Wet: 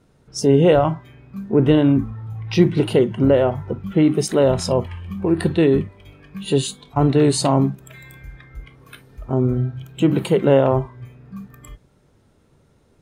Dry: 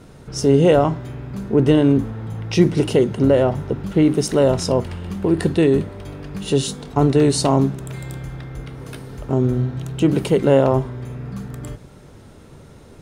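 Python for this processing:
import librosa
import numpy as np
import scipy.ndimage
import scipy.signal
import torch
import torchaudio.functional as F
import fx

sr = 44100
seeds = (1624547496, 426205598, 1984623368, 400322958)

y = fx.noise_reduce_blind(x, sr, reduce_db=14)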